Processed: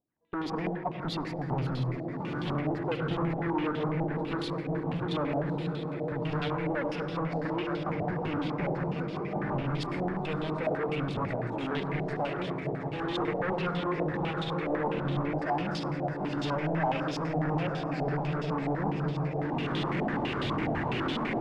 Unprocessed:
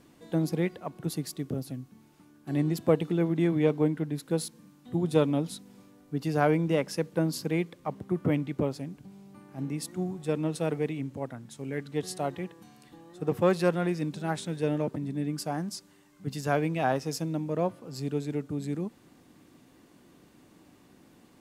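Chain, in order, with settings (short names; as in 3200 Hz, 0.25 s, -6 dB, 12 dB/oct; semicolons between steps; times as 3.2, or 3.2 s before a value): recorder AGC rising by 25 dB/s; gate -34 dBFS, range -32 dB; swelling echo 0.183 s, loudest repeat 5, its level -15.5 dB; flange 0.63 Hz, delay 0 ms, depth 6.2 ms, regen +29%; overloaded stage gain 32 dB; reverb RT60 1.0 s, pre-delay 74 ms, DRR 4 dB; stepped low-pass 12 Hz 720–3400 Hz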